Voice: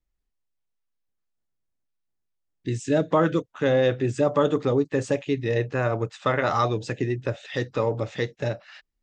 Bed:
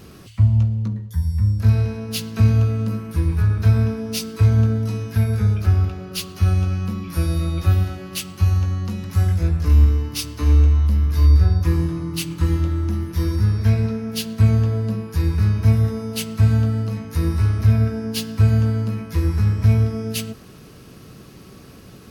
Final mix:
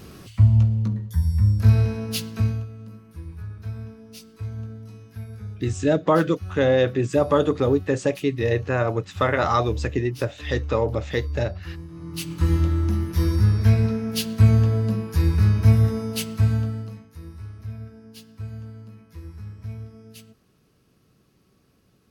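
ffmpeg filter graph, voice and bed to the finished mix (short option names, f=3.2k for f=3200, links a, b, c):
-filter_complex "[0:a]adelay=2950,volume=2dB[a];[1:a]volume=17.5dB,afade=t=out:st=2.05:d=0.61:silence=0.133352,afade=t=in:st=11.89:d=0.68:silence=0.133352,afade=t=out:st=15.98:d=1.13:silence=0.105925[b];[a][b]amix=inputs=2:normalize=0"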